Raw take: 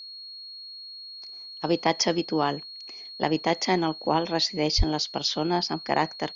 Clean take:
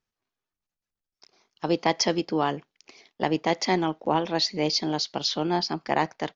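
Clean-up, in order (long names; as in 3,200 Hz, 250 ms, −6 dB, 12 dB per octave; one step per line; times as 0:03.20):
notch filter 4,300 Hz, Q 30
high-pass at the plosives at 0:04.77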